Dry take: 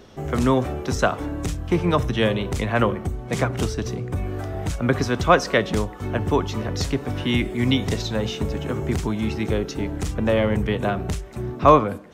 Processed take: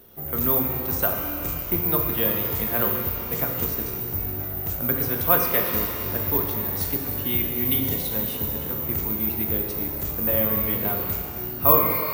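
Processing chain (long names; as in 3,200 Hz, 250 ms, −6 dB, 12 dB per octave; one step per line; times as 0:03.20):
notch filter 5,200 Hz, Q 22
bad sample-rate conversion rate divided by 3×, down none, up zero stuff
reverb with rising layers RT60 2.3 s, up +12 semitones, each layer −8 dB, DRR 2 dB
level −9 dB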